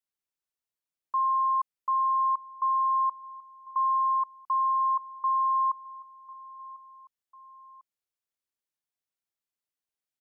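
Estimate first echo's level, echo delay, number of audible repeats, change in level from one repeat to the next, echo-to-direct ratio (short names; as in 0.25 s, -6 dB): -20.5 dB, 1.047 s, 2, -5.5 dB, -19.5 dB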